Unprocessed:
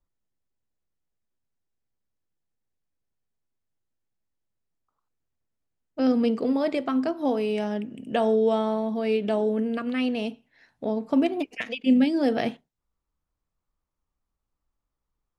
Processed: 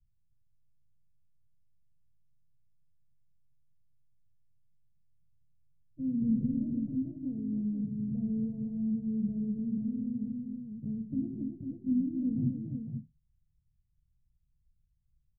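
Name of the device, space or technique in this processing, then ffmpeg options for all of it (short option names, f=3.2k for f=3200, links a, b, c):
the neighbour's flat through the wall: -filter_complex "[0:a]lowpass=f=150:w=0.5412,lowpass=f=150:w=1.3066,equalizer=f=130:t=o:w=0.9:g=7,asettb=1/sr,asplit=3[a][b][c];[a]atrim=end=6.224[d];[b]atrim=start=6.22:end=6.67,asetpts=PTS-STARTPTS,afade=t=in:d=0.004:c=qsin,afade=t=out:st=0.446:d=0.004:c=qsin,lowshelf=f=160:g=11[e];[c]atrim=start=6.666[f];[d][e]acrossfade=d=0.004:c1=hsin:c2=qsin[g];[g][f]acrossfade=d=0.004:c1=qsin:c2=hsin,aecho=1:1:53|141|279|498:0.316|0.211|0.473|0.501,volume=7dB"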